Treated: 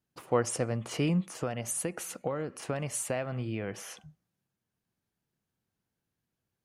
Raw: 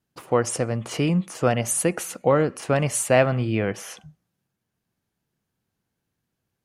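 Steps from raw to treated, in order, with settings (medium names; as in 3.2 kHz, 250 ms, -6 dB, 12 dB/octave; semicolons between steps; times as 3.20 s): 1.28–3.73 s: compression 6:1, threshold -24 dBFS, peak gain reduction 11.5 dB; trim -6 dB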